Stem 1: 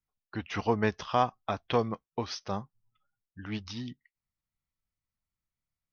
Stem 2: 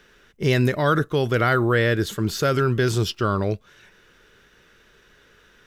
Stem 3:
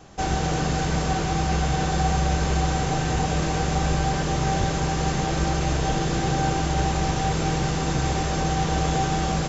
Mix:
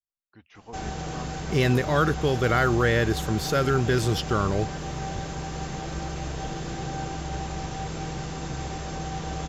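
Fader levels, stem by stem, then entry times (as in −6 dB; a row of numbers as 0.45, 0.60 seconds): −17.0, −2.5, −9.0 decibels; 0.00, 1.10, 0.55 seconds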